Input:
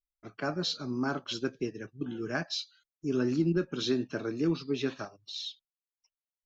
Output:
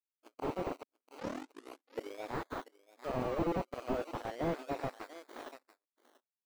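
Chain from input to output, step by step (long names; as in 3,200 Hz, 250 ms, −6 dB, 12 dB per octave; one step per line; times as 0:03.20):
0:03.24–0:04.02: low-pass filter 1,100 Hz 12 dB per octave
sample-and-hold swept by an LFO 20×, swing 60% 0.36 Hz
harmonic generator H 3 −10 dB, 4 −6 dB, 7 −33 dB, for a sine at −17.5 dBFS
0:00.83: tape start 1.48 s
linear-phase brick-wall high-pass 240 Hz
single-tap delay 688 ms −21 dB
slew-rate limiting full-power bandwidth 19 Hz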